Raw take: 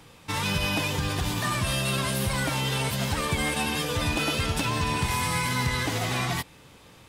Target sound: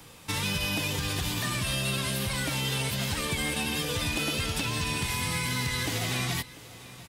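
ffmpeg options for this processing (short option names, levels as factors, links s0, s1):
-filter_complex "[0:a]highshelf=f=6000:g=9,acrossover=split=580|1700|4700[s0][s1][s2][s3];[s0]acompressor=threshold=0.0316:ratio=4[s4];[s1]acompressor=threshold=0.00631:ratio=4[s5];[s2]acompressor=threshold=0.0282:ratio=4[s6];[s3]acompressor=threshold=0.0126:ratio=4[s7];[s4][s5][s6][s7]amix=inputs=4:normalize=0,aecho=1:1:694:0.119"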